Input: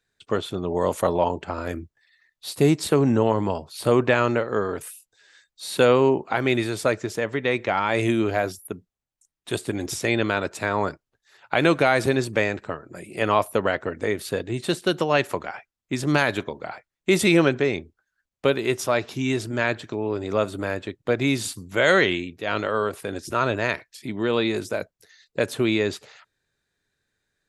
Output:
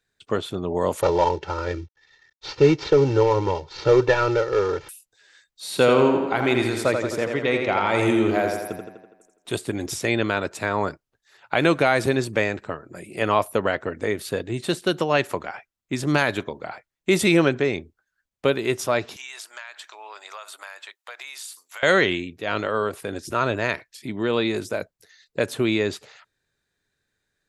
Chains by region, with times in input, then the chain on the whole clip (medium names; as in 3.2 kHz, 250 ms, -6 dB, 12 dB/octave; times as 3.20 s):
1.01–4.89 s: CVSD coder 32 kbps + comb 2.2 ms, depth 90%
5.65–9.57 s: band-stop 1.7 kHz, Q 17 + tape echo 84 ms, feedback 63%, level -4 dB, low-pass 5.4 kHz
19.16–21.83 s: high-pass 840 Hz 24 dB/octave + treble shelf 6.8 kHz +6.5 dB + compression 12:1, threshold -33 dBFS
whole clip: none